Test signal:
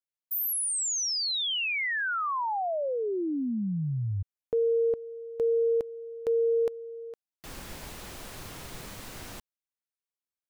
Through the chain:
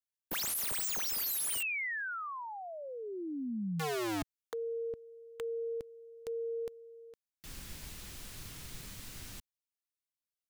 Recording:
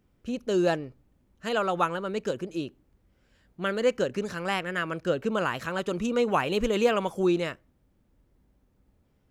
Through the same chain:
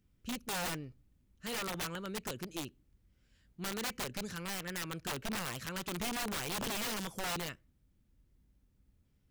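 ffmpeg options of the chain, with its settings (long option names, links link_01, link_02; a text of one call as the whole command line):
ffmpeg -i in.wav -af "equalizer=frequency=670:width_type=o:width=2.6:gain=-12,aeval=exprs='(mod(29.9*val(0)+1,2)-1)/29.9':channel_layout=same,volume=-2dB" out.wav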